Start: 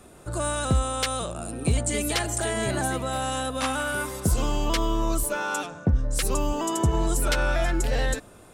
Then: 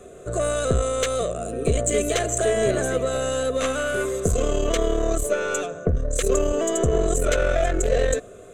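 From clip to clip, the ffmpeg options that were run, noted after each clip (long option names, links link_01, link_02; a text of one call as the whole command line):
ffmpeg -i in.wav -af "highshelf=frequency=8400:gain=-11.5,aeval=exprs='(tanh(10*val(0)+0.5)-tanh(0.5))/10':channel_layout=same,superequalizer=7b=3.55:8b=2.24:9b=0.282:14b=0.501:15b=2.82,volume=3.5dB" out.wav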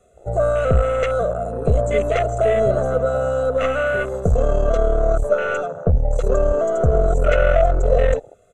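ffmpeg -i in.wav -filter_complex "[0:a]aecho=1:1:1.5:0.66,acrossover=split=7200[link_01][link_02];[link_02]acompressor=threshold=-41dB:ratio=4:attack=1:release=60[link_03];[link_01][link_03]amix=inputs=2:normalize=0,afwtdn=0.0398,volume=2.5dB" out.wav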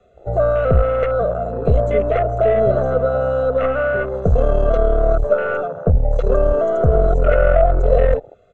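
ffmpeg -i in.wav -filter_complex "[0:a]lowpass=frequency=4700:width=0.5412,lowpass=frequency=4700:width=1.3066,acrossover=split=120|1800[link_01][link_02][link_03];[link_03]acompressor=threshold=-45dB:ratio=6[link_04];[link_01][link_02][link_04]amix=inputs=3:normalize=0,volume=2dB" out.wav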